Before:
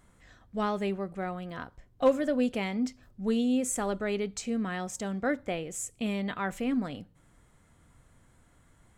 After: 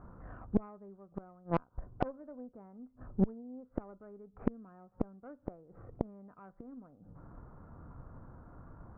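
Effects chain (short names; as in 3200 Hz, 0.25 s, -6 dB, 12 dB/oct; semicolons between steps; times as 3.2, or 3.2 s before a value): steep low-pass 1400 Hz 48 dB/oct; flipped gate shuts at -30 dBFS, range -31 dB; added harmonics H 3 -17 dB, 4 -20 dB, 8 -32 dB, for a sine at -28 dBFS; gain +15 dB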